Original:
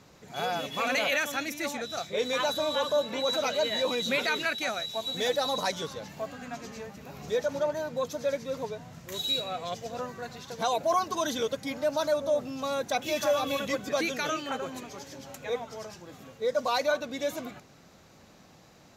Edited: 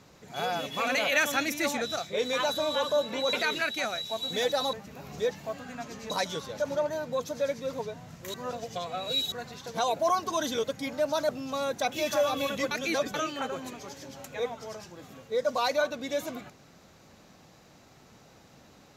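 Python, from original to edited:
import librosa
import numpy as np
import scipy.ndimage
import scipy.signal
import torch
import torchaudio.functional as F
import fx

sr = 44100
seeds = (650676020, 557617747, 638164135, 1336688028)

y = fx.edit(x, sr, fx.clip_gain(start_s=1.16, length_s=0.8, db=4.0),
    fx.cut(start_s=3.33, length_s=0.84),
    fx.swap(start_s=5.57, length_s=0.47, other_s=6.83, other_length_s=0.58),
    fx.reverse_span(start_s=9.18, length_s=0.98),
    fx.cut(start_s=12.13, length_s=0.26),
    fx.reverse_span(start_s=13.81, length_s=0.43), tone=tone)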